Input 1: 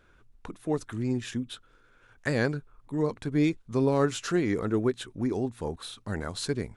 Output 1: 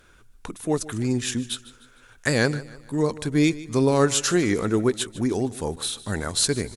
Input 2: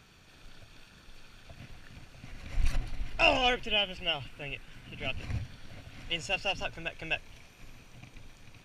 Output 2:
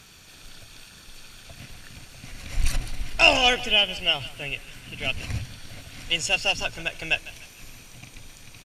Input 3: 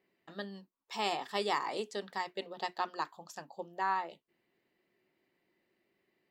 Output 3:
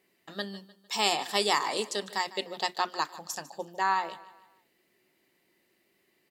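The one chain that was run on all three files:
parametric band 11,000 Hz +13 dB 2.3 octaves
on a send: repeating echo 151 ms, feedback 43%, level −18 dB
on the sum: level +4.5 dB

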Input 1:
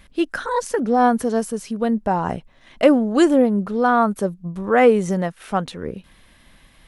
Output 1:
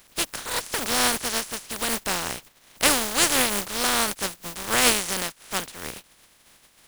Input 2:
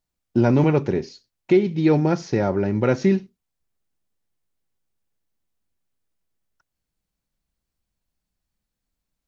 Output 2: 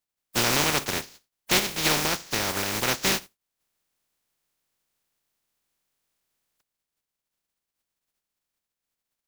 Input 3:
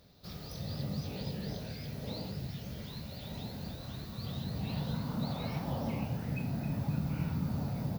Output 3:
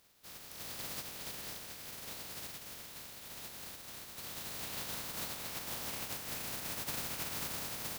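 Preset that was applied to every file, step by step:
compressing power law on the bin magnitudes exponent 0.21
level −6 dB

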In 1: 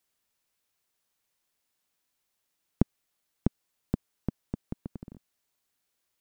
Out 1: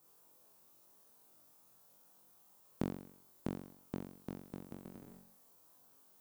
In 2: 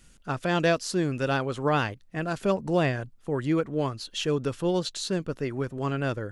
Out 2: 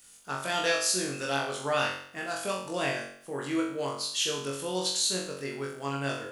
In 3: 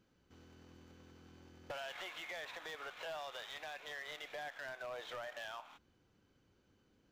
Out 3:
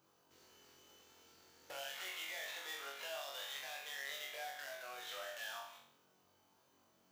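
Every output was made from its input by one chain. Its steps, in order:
RIAA equalisation recording
noise in a band 100–1,200 Hz −74 dBFS
flutter between parallel walls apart 3.7 metres, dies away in 0.6 s
level −6 dB

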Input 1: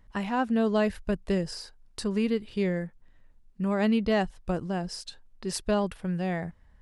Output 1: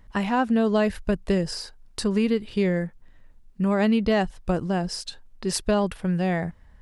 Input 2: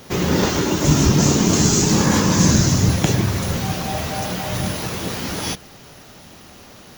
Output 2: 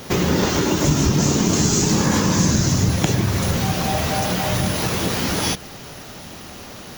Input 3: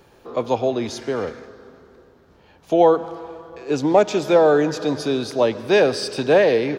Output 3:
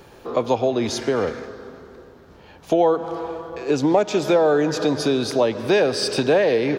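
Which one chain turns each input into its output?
downward compressor 2.5 to 1, threshold −24 dBFS
level +6 dB

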